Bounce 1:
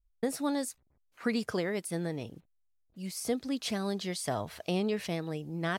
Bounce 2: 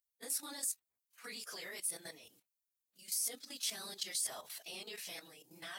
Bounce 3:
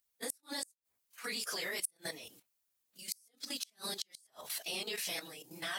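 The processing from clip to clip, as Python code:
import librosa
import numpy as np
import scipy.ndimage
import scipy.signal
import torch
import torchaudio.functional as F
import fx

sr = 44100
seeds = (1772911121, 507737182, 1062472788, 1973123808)

y1 = fx.phase_scramble(x, sr, seeds[0], window_ms=50)
y1 = np.diff(y1, prepend=0.0)
y1 = fx.level_steps(y1, sr, step_db=11)
y1 = y1 * librosa.db_to_amplitude(8.5)
y2 = fx.gate_flip(y1, sr, shuts_db=-29.0, range_db=-38)
y2 = y2 * librosa.db_to_amplitude(8.0)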